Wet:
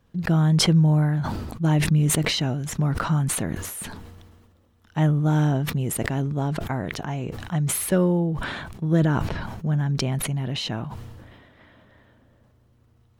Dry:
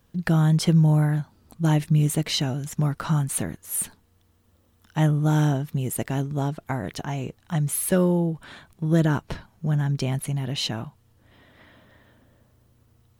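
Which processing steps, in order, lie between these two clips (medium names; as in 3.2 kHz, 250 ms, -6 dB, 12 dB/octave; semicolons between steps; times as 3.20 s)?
low-pass 3.3 kHz 6 dB/octave; decay stretcher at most 34 dB/s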